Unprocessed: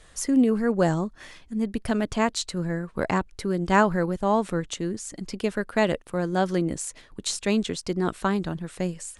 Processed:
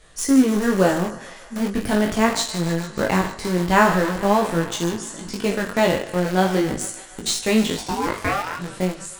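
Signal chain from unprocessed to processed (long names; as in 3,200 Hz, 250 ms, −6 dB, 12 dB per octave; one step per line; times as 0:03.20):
peak hold with a decay on every bin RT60 0.53 s
feedback echo with a high-pass in the loop 148 ms, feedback 85%, high-pass 500 Hz, level −15 dB
in parallel at −8 dB: bit reduction 4 bits
0:07.76–0:08.58: on the sum: ring modulation 460 Hz → 1,300 Hz
chorus effect 0.41 Hz, delay 17.5 ms, depth 4.9 ms
level +3.5 dB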